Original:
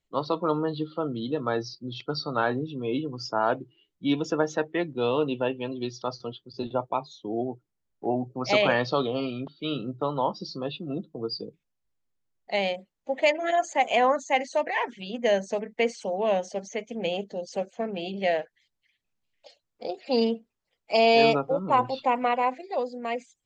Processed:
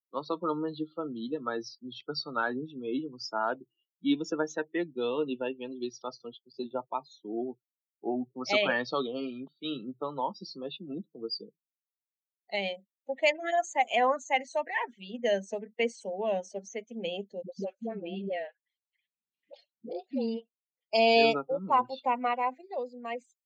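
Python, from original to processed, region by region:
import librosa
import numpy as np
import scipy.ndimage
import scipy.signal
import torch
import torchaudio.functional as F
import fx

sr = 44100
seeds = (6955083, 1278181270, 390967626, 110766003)

y = fx.chain(x, sr, fx.air_absorb(metres=140.0),
    fx.dispersion(late='highs', ms=99.0, hz=380.0),
    fx.band_squash(depth_pct=70), at=(17.42, 20.93))
y = fx.bin_expand(y, sr, power=1.5)
y = scipy.signal.sosfilt(scipy.signal.butter(4, 190.0, 'highpass', fs=sr, output='sos'), y)
y = fx.dynamic_eq(y, sr, hz=550.0, q=1.3, threshold_db=-33.0, ratio=4.0, max_db=-3)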